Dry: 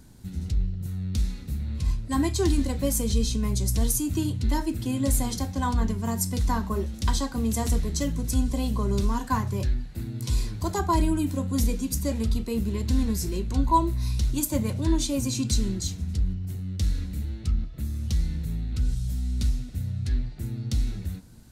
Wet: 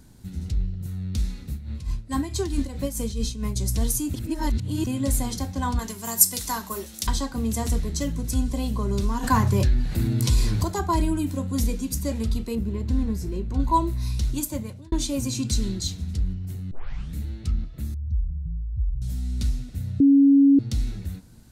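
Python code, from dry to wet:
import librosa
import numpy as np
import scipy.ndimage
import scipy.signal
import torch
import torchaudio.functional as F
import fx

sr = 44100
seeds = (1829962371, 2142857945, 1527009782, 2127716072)

y = fx.tremolo(x, sr, hz=4.6, depth=0.66, at=(1.51, 3.56))
y = fx.riaa(y, sr, side='recording', at=(5.79, 7.07))
y = fx.env_flatten(y, sr, amount_pct=50, at=(9.22, 10.63), fade=0.02)
y = fx.high_shelf(y, sr, hz=2200.0, db=-12.0, at=(12.55, 13.6))
y = fx.peak_eq(y, sr, hz=3900.0, db=6.0, octaves=0.57, at=(15.62, 16.11))
y = fx.spec_expand(y, sr, power=2.5, at=(17.94, 19.02))
y = fx.edit(y, sr, fx.reverse_span(start_s=4.14, length_s=0.73),
    fx.fade_out_span(start_s=14.33, length_s=0.59),
    fx.tape_start(start_s=16.71, length_s=0.45),
    fx.bleep(start_s=20.0, length_s=0.59, hz=278.0, db=-11.5), tone=tone)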